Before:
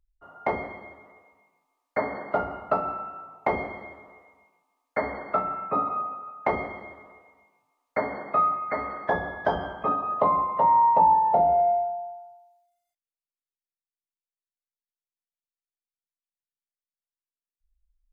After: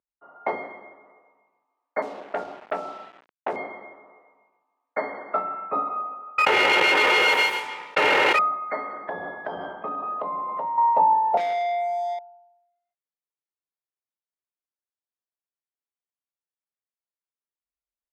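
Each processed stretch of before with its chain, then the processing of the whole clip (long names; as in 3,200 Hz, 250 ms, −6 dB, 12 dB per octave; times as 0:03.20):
0:02.02–0:03.56: low-pass filter 1,000 Hz + centre clipping without the shift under −40.5 dBFS + saturating transformer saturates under 1,100 Hz
0:06.38–0:08.39: lower of the sound and its delayed copy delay 2.2 ms + parametric band 2,500 Hz +7.5 dB 1 octave + envelope flattener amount 100%
0:08.93–0:10.78: low-shelf EQ 260 Hz +6.5 dB + downward compressor, threshold −26 dBFS + high-pass filter 40 Hz
0:11.37–0:12.19: leveller curve on the samples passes 3 + downward compressor 12 to 1, threshold −24 dBFS
whole clip: low-pass that shuts in the quiet parts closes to 1,700 Hz, open at −19 dBFS; high-pass filter 290 Hz 12 dB per octave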